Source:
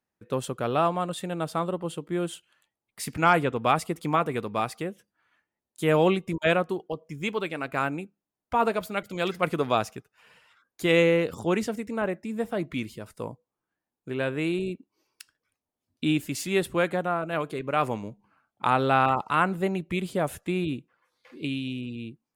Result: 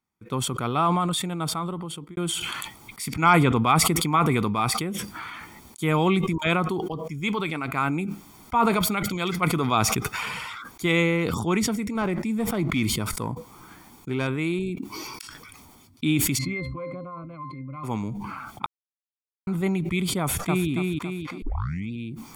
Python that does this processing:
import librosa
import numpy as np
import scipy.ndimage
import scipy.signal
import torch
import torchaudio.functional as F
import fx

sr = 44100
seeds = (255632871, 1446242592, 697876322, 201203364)

y = fx.leveller(x, sr, passes=1, at=(11.95, 14.27))
y = fx.octave_resonator(y, sr, note='C', decay_s=0.19, at=(16.37, 17.83), fade=0.02)
y = fx.echo_throw(y, sr, start_s=20.2, length_s=0.5, ms=280, feedback_pct=35, wet_db=-1.5)
y = fx.edit(y, sr, fx.fade_out_span(start_s=1.41, length_s=0.76, curve='qua'),
    fx.silence(start_s=18.66, length_s=0.81),
    fx.tape_start(start_s=21.42, length_s=0.49), tone=tone)
y = y + 0.62 * np.pad(y, (int(0.9 * sr / 1000.0), 0))[:len(y)]
y = fx.sustainer(y, sr, db_per_s=22.0)